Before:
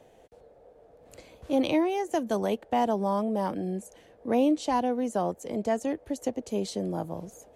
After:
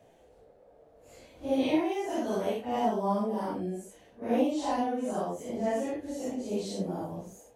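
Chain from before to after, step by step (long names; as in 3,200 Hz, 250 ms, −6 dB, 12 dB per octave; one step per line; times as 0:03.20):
random phases in long frames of 200 ms
level −2.5 dB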